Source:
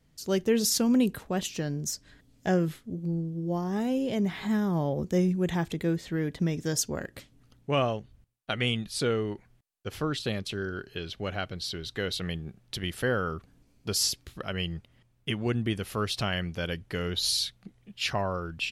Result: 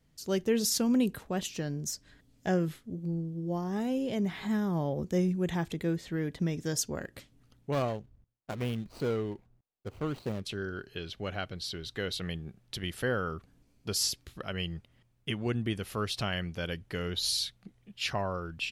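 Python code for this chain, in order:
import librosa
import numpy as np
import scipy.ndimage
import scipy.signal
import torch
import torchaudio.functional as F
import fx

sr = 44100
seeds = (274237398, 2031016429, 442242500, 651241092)

y = fx.median_filter(x, sr, points=25, at=(7.72, 10.42))
y = F.gain(torch.from_numpy(y), -3.0).numpy()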